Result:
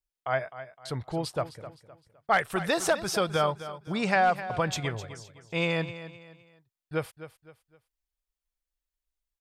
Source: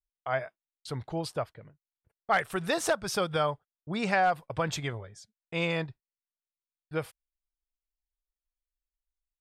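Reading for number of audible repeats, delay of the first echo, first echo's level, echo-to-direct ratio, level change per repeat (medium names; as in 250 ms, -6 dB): 3, 257 ms, -13.5 dB, -13.0 dB, -9.0 dB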